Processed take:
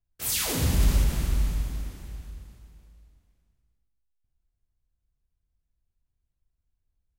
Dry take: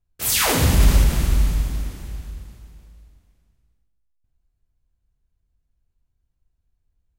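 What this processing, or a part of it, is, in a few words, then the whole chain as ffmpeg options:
one-band saturation: -filter_complex "[0:a]acrossover=split=430|2900[link_01][link_02][link_03];[link_02]asoftclip=type=tanh:threshold=-29dB[link_04];[link_01][link_04][link_03]amix=inputs=3:normalize=0,volume=-7dB"

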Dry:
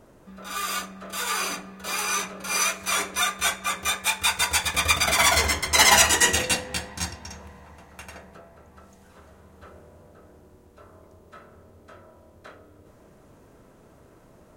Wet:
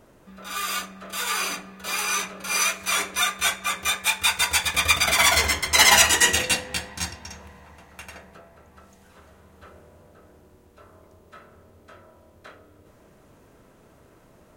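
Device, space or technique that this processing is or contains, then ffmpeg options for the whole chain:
presence and air boost: -af "equalizer=frequency=2700:width_type=o:width=1.8:gain=4,highshelf=frequency=12000:gain=5.5,volume=-1.5dB"

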